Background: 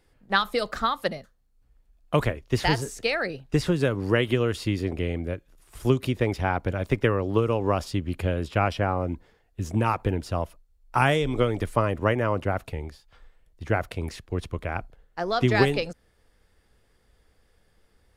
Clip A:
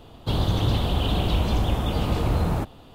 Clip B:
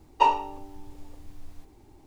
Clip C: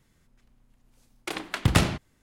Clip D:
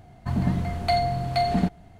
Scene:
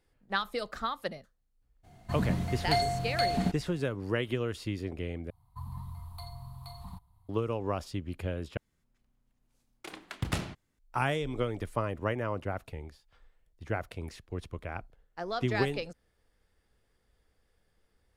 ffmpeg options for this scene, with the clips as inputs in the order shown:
-filter_complex "[4:a]asplit=2[a][b];[0:a]volume=-8.5dB[c];[a]highshelf=f=3.2k:g=9[d];[b]firequalizer=gain_entry='entry(110,0);entry(170,-14);entry(340,-29);entry(620,-26);entry(990,9);entry(1500,-19);entry(2800,-16);entry(4000,-4);entry(5900,-14);entry(11000,9)':delay=0.05:min_phase=1[e];[c]asplit=3[f][g][h];[f]atrim=end=5.304[i];[e]atrim=end=1.99,asetpts=PTS-STARTPTS,volume=-12dB[j];[g]atrim=start=7.286:end=8.574[k];[3:a]atrim=end=2.22,asetpts=PTS-STARTPTS,volume=-11.5dB[l];[h]atrim=start=10.786[m];[d]atrim=end=1.99,asetpts=PTS-STARTPTS,volume=-6.5dB,afade=t=in:d=0.02,afade=t=out:st=1.97:d=0.02,adelay=1830[n];[i][j]acrossfade=d=0.004:c1=hsin:c2=hsin[o];[o][k]acrossfade=d=0.004:c1=hsin:c2=hsin[p];[p][l]acrossfade=d=0.004:c1=hsin:c2=hsin[q];[q][m]acrossfade=d=0.004:c1=hsin:c2=hsin[r];[r][n]amix=inputs=2:normalize=0"

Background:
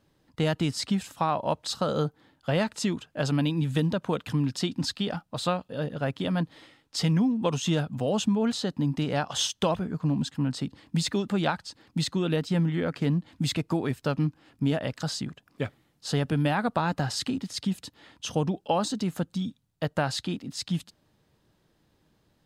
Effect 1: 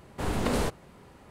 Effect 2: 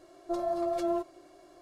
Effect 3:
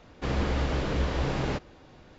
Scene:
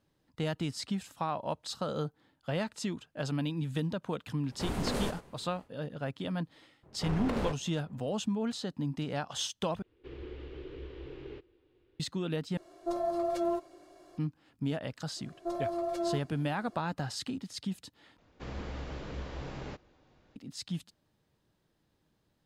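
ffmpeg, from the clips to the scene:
-filter_complex "[1:a]asplit=2[a][b];[3:a]asplit=2[c][d];[2:a]asplit=2[e][f];[0:a]volume=-7.5dB[g];[a]aecho=1:1:97|194:0.251|0.0402[h];[b]adynamicsmooth=sensitivity=7:basefreq=1.1k[i];[c]firequalizer=gain_entry='entry(110,0);entry(190,-13);entry(370,13);entry(630,-11);entry(900,-8);entry(1900,-3);entry(2900,2);entry(5900,-16);entry(9700,-22)':delay=0.05:min_phase=1[j];[g]asplit=4[k][l][m][n];[k]atrim=end=9.824[o];[j]atrim=end=2.18,asetpts=PTS-STARTPTS,volume=-18dB[p];[l]atrim=start=11.996:end=12.574[q];[e]atrim=end=1.61,asetpts=PTS-STARTPTS,volume=-1dB[r];[m]atrim=start=14.176:end=18.184[s];[d]atrim=end=2.18,asetpts=PTS-STARTPTS,volume=-12.5dB[t];[n]atrim=start=20.356[u];[h]atrim=end=1.3,asetpts=PTS-STARTPTS,volume=-6dB,afade=t=in:d=0.1,afade=t=out:st=1.2:d=0.1,adelay=194481S[v];[i]atrim=end=1.3,asetpts=PTS-STARTPTS,volume=-6dB,afade=t=in:d=0.004:c=hsin,afade=t=out:st=1.296:d=0.004:c=hsin,adelay=6830[w];[f]atrim=end=1.61,asetpts=PTS-STARTPTS,volume=-3dB,afade=t=in:d=0.004:c=hsin,afade=t=out:st=1.606:d=0.004:c=hsin,adelay=15160[x];[o][p]acrossfade=d=0.004:c1=hsin:c2=hsin[y];[y][q]acrossfade=d=0.004:c1=hsin:c2=hsin[z];[z][r]acrossfade=d=0.004:c1=hsin:c2=hsin[aa];[aa][s]acrossfade=d=0.004:c1=hsin:c2=hsin[ab];[ab][t]acrossfade=d=0.004:c1=hsin:c2=hsin[ac];[ac][u]acrossfade=d=0.004:c1=hsin:c2=hsin[ad];[ad][v][w][x]amix=inputs=4:normalize=0"

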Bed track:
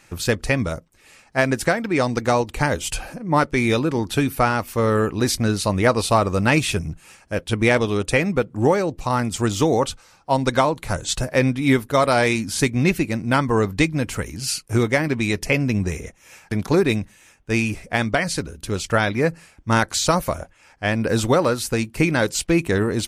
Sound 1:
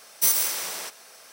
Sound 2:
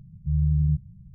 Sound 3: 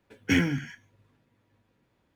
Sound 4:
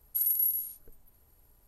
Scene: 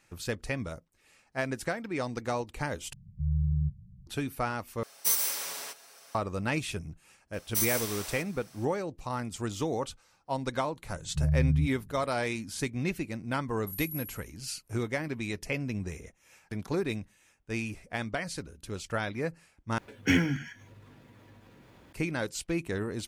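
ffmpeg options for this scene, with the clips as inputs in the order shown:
-filter_complex "[2:a]asplit=2[a][b];[1:a]asplit=2[c][d];[0:a]volume=-13dB[e];[a]equalizer=f=160:w=6.1:g=-5[f];[c]aecho=1:1:7.2:0.52[g];[3:a]acompressor=mode=upward:threshold=-39dB:ratio=2.5:attack=3.2:release=140:knee=2.83:detection=peak[h];[e]asplit=4[i][j][k][l];[i]atrim=end=2.934[m];[f]atrim=end=1.14,asetpts=PTS-STARTPTS,volume=-4.5dB[n];[j]atrim=start=4.066:end=4.834[o];[g]atrim=end=1.32,asetpts=PTS-STARTPTS,volume=-6.5dB[p];[k]atrim=start=6.146:end=19.784[q];[h]atrim=end=2.15,asetpts=PTS-STARTPTS,volume=-1dB[r];[l]atrim=start=21.926[s];[d]atrim=end=1.32,asetpts=PTS-STARTPTS,volume=-8dB,afade=t=in:d=0.004:c=hsin,afade=t=out:st=1.316:d=0.004:c=hsin,adelay=7330[t];[b]atrim=end=1.14,asetpts=PTS-STARTPTS,volume=-3.5dB,afade=t=in:d=0.004:c=hsin,afade=t=out:st=1.136:d=0.004:c=hsin,adelay=480690S[u];[4:a]atrim=end=1.67,asetpts=PTS-STARTPTS,volume=-13dB,afade=t=in:d=0.004:c=hsin,afade=t=out:st=1.666:d=0.004:c=hsin,adelay=13520[v];[m][n]acrossfade=d=0.004:c1=hsin:c2=hsin[w];[w][o]acrossfade=d=0.004:c1=hsin:c2=hsin[x];[x][p]acrossfade=d=0.004:c1=hsin:c2=hsin[y];[y][q]acrossfade=d=0.004:c1=hsin:c2=hsin[z];[z][r]acrossfade=d=0.004:c1=hsin:c2=hsin[aa];[aa][s]acrossfade=d=0.004:c1=hsin:c2=hsin[ab];[ab][t][u][v]amix=inputs=4:normalize=0"

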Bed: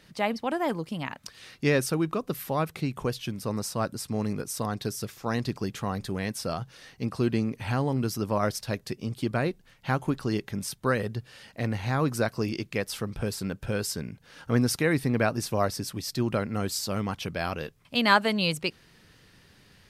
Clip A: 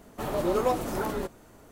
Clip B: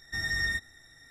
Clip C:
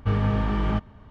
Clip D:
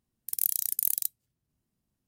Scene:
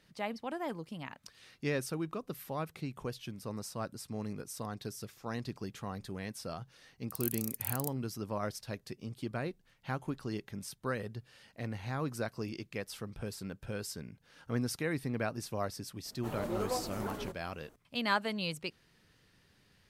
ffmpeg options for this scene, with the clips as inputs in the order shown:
-filter_complex "[0:a]volume=-10dB[a];[4:a]atrim=end=2.07,asetpts=PTS-STARTPTS,volume=-11dB,afade=t=in:d=0.004:c=hsin,afade=t=out:st=2.066:d=0.004:c=hsin,adelay=300762S[b];[1:a]atrim=end=1.71,asetpts=PTS-STARTPTS,volume=-10dB,afade=t=in:d=0.004:c=hsin,afade=t=out:st=1.706:d=0.004:c=hsin,adelay=16050[c];[a][b][c]amix=inputs=3:normalize=0"

